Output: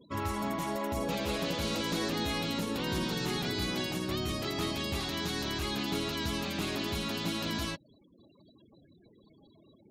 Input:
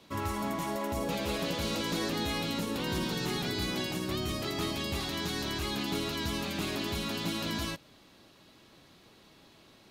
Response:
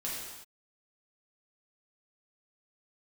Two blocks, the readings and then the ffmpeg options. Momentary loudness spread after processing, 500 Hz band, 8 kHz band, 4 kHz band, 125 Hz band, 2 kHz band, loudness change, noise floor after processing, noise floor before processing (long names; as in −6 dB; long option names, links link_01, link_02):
2 LU, 0.0 dB, −0.5 dB, 0.0 dB, 0.0 dB, 0.0 dB, 0.0 dB, −62 dBFS, −59 dBFS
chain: -af "afftfilt=real='re*gte(hypot(re,im),0.00316)':imag='im*gte(hypot(re,im),0.00316)':win_size=1024:overlap=0.75,acompressor=mode=upward:threshold=-55dB:ratio=2.5"